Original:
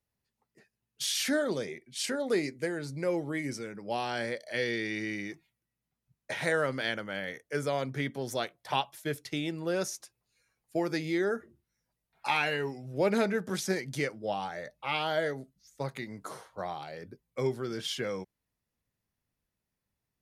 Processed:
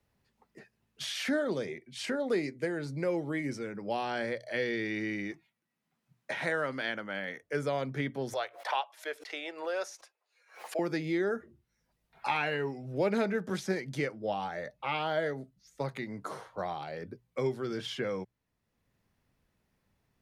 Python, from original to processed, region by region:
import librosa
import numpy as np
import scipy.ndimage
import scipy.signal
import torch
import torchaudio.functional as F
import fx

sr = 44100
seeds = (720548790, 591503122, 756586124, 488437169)

y = fx.chain(x, sr, fx.highpass(hz=190.0, slope=12),
    fx.peak_eq(hz=450.0, db=-4.5, octaves=0.96), at=(5.31, 7.42))
y = fx.chain(y, sr, fx.highpass(hz=520.0, slope=24),
    fx.high_shelf(hz=7800.0, db=-6.0),
    fx.pre_swell(db_per_s=140.0), at=(8.33, 10.79))
y = fx.high_shelf(y, sr, hz=4800.0, db=-11.5)
y = fx.hum_notches(y, sr, base_hz=60, count=2)
y = fx.band_squash(y, sr, depth_pct=40)